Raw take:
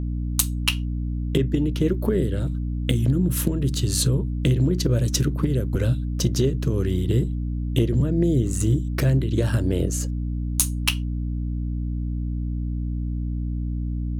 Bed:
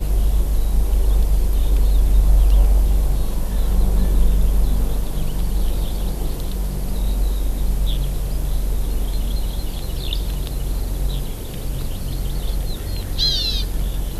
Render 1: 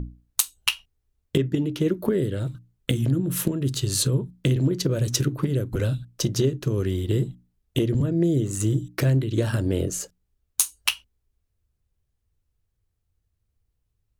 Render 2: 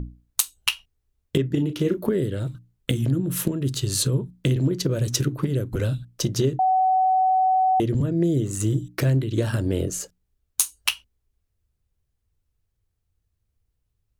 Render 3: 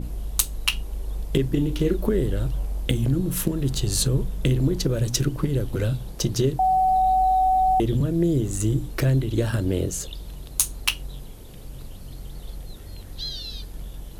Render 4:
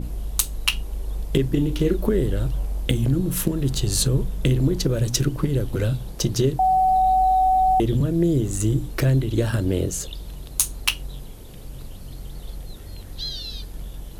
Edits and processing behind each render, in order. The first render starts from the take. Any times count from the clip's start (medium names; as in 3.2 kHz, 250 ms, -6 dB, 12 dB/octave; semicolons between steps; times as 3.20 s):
hum notches 60/120/180/240/300 Hz
1.47–2.04 s: doubling 34 ms -8.5 dB; 6.59–7.80 s: bleep 752 Hz -16 dBFS
add bed -13.5 dB
trim +1.5 dB; peak limiter -3 dBFS, peak gain reduction 2 dB